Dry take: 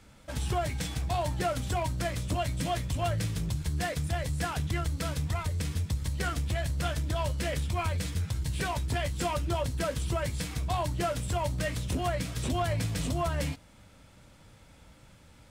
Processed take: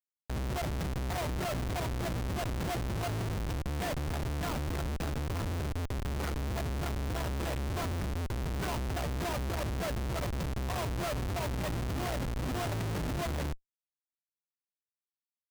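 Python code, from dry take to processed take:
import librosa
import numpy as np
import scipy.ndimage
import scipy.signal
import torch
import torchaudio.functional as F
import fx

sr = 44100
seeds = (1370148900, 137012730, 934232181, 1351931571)

p1 = x + fx.echo_single(x, sr, ms=331, db=-20.5, dry=0)
p2 = (np.kron(p1[::4], np.eye(4)[0]) * 4)[:len(p1)]
p3 = fx.notch(p2, sr, hz=500.0, q=12.0)
p4 = fx.schmitt(p3, sr, flips_db=-20.5)
y = p4 * 10.0 ** (-8.0 / 20.0)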